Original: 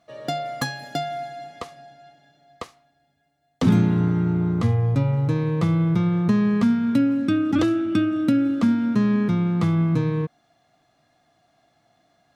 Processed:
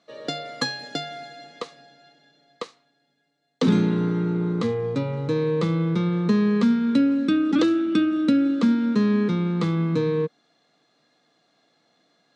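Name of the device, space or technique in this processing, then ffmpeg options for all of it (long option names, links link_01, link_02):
television speaker: -af "highpass=frequency=170:width=0.5412,highpass=frequency=170:width=1.3066,equalizer=frequency=470:width_type=q:width=4:gain=8,equalizer=frequency=700:width_type=q:width=4:gain=-9,equalizer=frequency=4000:width_type=q:width=4:gain=7,lowpass=frequency=8300:width=0.5412,lowpass=frequency=8300:width=1.3066"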